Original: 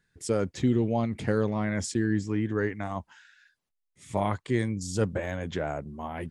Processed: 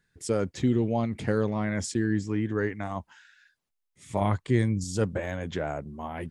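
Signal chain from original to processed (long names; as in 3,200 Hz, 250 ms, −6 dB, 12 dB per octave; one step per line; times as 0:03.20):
0:04.21–0:04.84: low-shelf EQ 170 Hz +8 dB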